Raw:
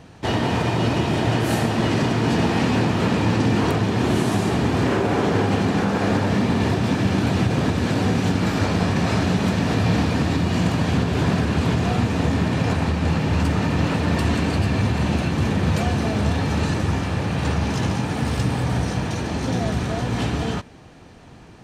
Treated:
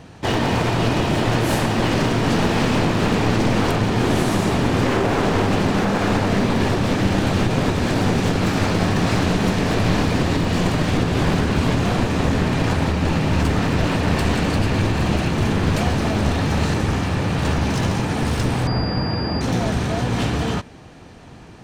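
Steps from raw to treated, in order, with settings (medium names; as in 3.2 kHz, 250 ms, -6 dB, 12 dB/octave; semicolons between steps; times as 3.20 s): one-sided wavefolder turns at -19.5 dBFS; 18.67–19.41 s: class-D stage that switches slowly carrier 4.8 kHz; trim +3 dB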